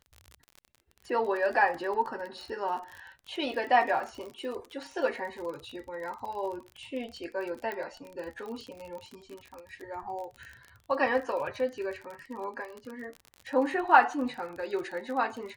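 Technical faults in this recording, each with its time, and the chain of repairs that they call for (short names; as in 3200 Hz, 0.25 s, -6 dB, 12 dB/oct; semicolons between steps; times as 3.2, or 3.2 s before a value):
crackle 41/s -36 dBFS
7.72 pop -23 dBFS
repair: de-click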